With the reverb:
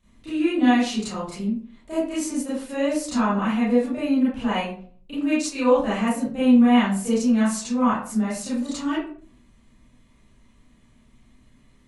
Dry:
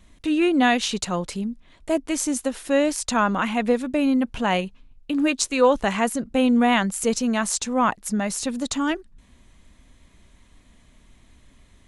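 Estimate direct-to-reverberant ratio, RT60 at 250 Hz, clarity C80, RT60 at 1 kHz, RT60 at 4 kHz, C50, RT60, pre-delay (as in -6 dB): -11.0 dB, 0.55 s, 6.5 dB, 0.45 s, 0.30 s, 0.5 dB, 0.50 s, 27 ms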